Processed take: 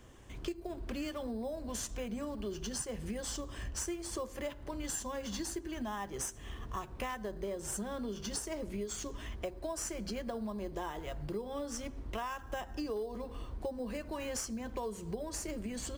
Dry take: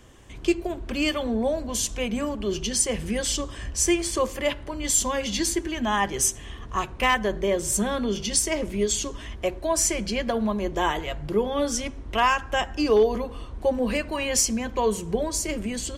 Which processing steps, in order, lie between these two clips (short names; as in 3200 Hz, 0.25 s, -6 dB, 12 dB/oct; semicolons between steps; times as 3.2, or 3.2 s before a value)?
in parallel at -10.5 dB: sample-rate reducer 4500 Hz, jitter 0%; on the sum: dynamic EQ 2500 Hz, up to -5 dB, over -39 dBFS, Q 1.3; compressor 6:1, threshold -29 dBFS, peak gain reduction 15 dB; gain -7 dB